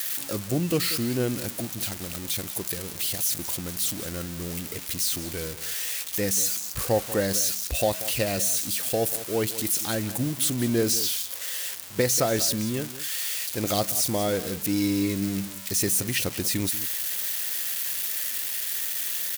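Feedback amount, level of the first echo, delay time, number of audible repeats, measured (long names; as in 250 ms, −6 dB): repeats not evenly spaced, −15.0 dB, 187 ms, 1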